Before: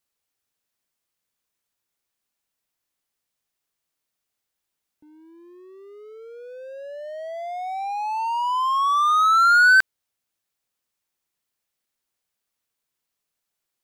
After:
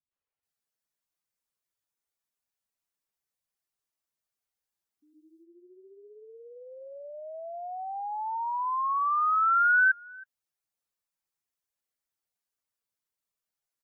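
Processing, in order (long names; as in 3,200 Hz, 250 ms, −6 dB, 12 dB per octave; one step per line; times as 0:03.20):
gate on every frequency bin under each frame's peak −10 dB strong
three-band delay without the direct sound lows, mids, highs 110/430 ms, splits 280/3,000 Hz
level −6.5 dB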